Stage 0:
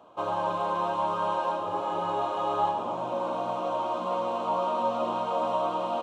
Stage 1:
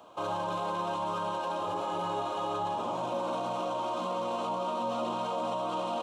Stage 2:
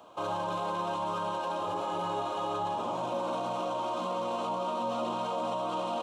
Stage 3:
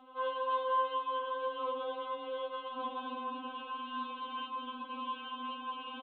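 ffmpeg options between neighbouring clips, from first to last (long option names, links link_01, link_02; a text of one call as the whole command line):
ffmpeg -i in.wav -filter_complex "[0:a]highshelf=frequency=3100:gain=11,acrossover=split=350[link_01][link_02];[link_02]alimiter=level_in=2.5dB:limit=-24dB:level=0:latency=1:release=20,volume=-2.5dB[link_03];[link_01][link_03]amix=inputs=2:normalize=0" out.wav
ffmpeg -i in.wav -af anull out.wav
ffmpeg -i in.wav -af "aresample=8000,aresample=44100,afftfilt=real='re*3.46*eq(mod(b,12),0)':imag='im*3.46*eq(mod(b,12),0)':win_size=2048:overlap=0.75" out.wav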